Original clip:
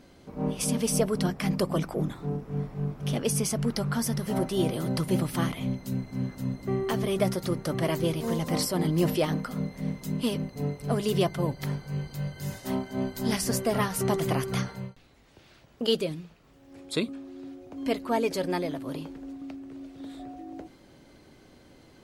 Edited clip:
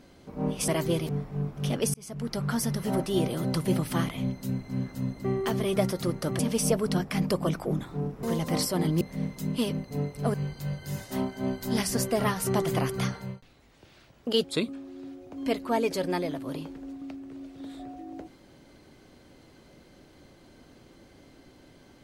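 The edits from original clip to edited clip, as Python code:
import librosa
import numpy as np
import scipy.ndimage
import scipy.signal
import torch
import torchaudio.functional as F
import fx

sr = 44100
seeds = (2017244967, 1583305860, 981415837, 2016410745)

y = fx.edit(x, sr, fx.swap(start_s=0.68, length_s=1.84, other_s=7.82, other_length_s=0.41),
    fx.fade_in_span(start_s=3.37, length_s=0.56),
    fx.cut(start_s=9.01, length_s=0.65),
    fx.cut(start_s=10.99, length_s=0.89),
    fx.cut(start_s=15.98, length_s=0.86), tone=tone)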